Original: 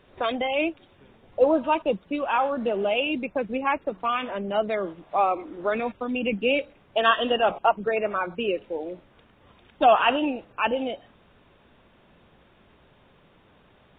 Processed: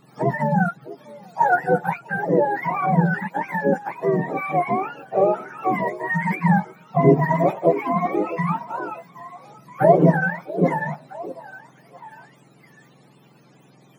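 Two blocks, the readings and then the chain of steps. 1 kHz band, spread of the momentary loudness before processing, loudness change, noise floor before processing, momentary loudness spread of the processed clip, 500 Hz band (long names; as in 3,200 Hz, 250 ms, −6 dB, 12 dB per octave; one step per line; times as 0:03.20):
+3.0 dB, 9 LU, +4.0 dB, −58 dBFS, 17 LU, +3.0 dB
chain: frequency axis turned over on the octave scale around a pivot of 680 Hz
echo through a band-pass that steps 651 ms, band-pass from 400 Hz, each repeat 1.4 octaves, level −11 dB
level +5.5 dB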